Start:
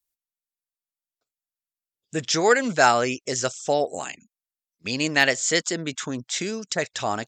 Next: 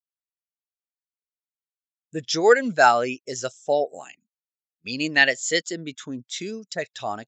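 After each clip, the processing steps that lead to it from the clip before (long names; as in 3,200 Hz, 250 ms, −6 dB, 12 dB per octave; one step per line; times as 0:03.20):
dynamic equaliser 3,600 Hz, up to +5 dB, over −38 dBFS, Q 1
every bin expanded away from the loudest bin 1.5 to 1
level −1 dB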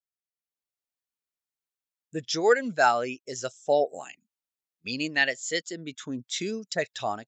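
automatic gain control gain up to 8 dB
level −7 dB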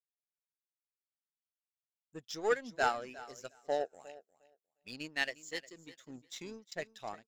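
repeating echo 356 ms, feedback 25%, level −13 dB
power curve on the samples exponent 1.4
level −7 dB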